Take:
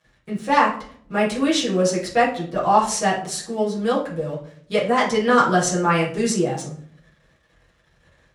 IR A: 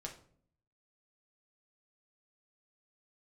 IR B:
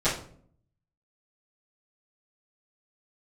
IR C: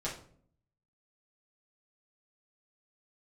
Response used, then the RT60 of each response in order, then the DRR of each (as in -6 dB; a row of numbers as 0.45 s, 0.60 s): C; 0.55 s, 0.55 s, 0.55 s; -0.5 dB, -15.5 dB, -7.5 dB